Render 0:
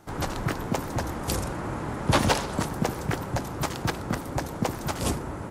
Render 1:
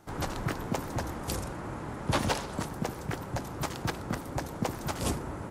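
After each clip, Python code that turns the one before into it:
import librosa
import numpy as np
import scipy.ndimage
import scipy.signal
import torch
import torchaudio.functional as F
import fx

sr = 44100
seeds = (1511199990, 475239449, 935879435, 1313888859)

y = fx.rider(x, sr, range_db=10, speed_s=2.0)
y = F.gain(torch.from_numpy(y), -6.0).numpy()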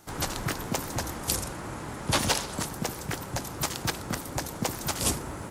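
y = fx.high_shelf(x, sr, hz=2700.0, db=11.5)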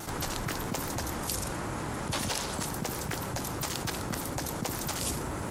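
y = fx.vibrato(x, sr, rate_hz=0.4, depth_cents=8.5)
y = fx.env_flatten(y, sr, amount_pct=70)
y = F.gain(torch.from_numpy(y), -8.5).numpy()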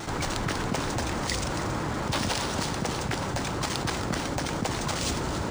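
y = x + 10.0 ** (-9.5 / 20.0) * np.pad(x, (int(277 * sr / 1000.0), 0))[:len(x)]
y = np.interp(np.arange(len(y)), np.arange(len(y))[::3], y[::3])
y = F.gain(torch.from_numpy(y), 4.5).numpy()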